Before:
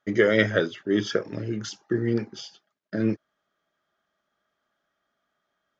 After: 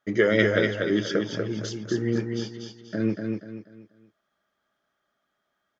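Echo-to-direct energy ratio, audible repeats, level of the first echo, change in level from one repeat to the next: -4.0 dB, 4, -4.5 dB, -9.5 dB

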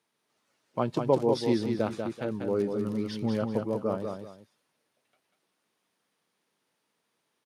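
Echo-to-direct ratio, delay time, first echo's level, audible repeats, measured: -5.0 dB, 0.192 s, -5.5 dB, 2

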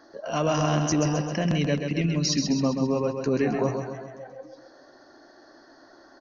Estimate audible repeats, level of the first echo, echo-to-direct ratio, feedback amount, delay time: 6, -6.0 dB, -4.5 dB, 54%, 0.132 s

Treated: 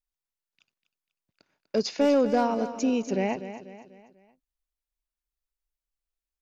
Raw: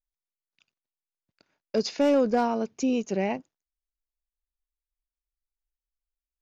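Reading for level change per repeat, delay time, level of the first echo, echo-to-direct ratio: -7.0 dB, 0.246 s, -12.0 dB, -11.0 dB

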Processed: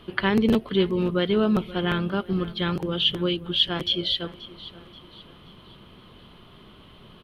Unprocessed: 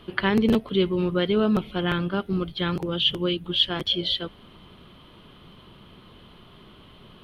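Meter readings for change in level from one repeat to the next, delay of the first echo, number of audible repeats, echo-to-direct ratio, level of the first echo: -7.0 dB, 0.53 s, 3, -17.0 dB, -18.0 dB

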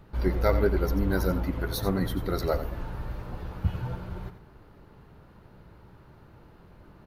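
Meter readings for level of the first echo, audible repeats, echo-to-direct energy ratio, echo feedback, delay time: -11.5 dB, 1, -11.5 dB, no steady repeat, 89 ms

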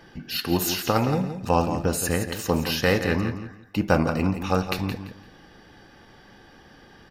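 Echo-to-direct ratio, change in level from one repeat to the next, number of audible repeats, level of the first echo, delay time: -9.5 dB, -13.0 dB, 2, -9.5 dB, 0.17 s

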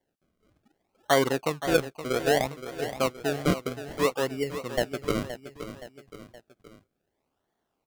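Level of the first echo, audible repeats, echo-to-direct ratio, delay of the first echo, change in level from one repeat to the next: -11.5 dB, 3, -10.5 dB, 0.521 s, -6.0 dB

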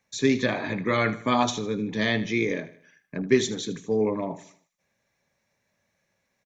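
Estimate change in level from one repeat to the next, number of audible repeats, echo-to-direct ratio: -7.5 dB, 3, -14.5 dB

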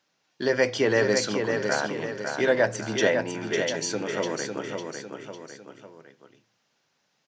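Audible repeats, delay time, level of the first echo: 3, 0.552 s, -5.5 dB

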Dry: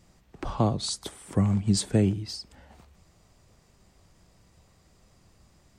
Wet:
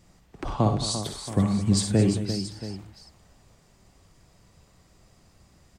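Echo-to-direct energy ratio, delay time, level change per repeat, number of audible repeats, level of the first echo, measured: -4.0 dB, 55 ms, no steady repeat, 5, -9.5 dB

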